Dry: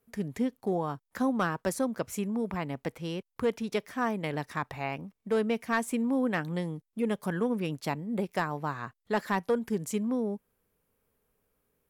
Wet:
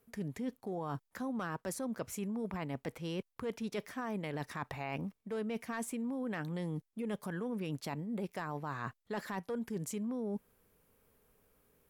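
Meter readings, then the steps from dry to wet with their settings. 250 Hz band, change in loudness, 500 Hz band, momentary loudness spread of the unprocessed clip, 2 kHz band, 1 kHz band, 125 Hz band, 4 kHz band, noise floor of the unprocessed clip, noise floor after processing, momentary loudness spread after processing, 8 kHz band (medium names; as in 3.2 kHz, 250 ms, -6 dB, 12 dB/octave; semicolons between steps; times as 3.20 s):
-7.5 dB, -8.0 dB, -9.0 dB, 8 LU, -9.0 dB, -9.0 dB, -5.0 dB, -7.0 dB, -81 dBFS, -80 dBFS, 3 LU, -4.5 dB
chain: peak limiter -25 dBFS, peak gain reduction 8 dB; reverse; compression 5:1, threshold -42 dBFS, peak gain reduction 12.5 dB; reverse; trim +5.5 dB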